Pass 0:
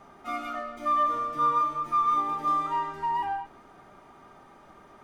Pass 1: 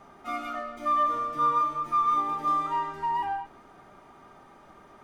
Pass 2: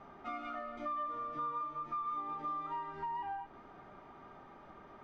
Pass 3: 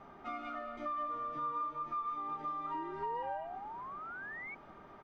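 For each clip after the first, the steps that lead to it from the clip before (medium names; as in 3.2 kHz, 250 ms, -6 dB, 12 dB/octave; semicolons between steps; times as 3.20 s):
no audible change
compression 3:1, threshold -38 dBFS, peak gain reduction 12.5 dB; distance through air 180 m; trim -1.5 dB
delay 206 ms -11.5 dB; painted sound rise, 2.74–4.55 s, 300–2300 Hz -45 dBFS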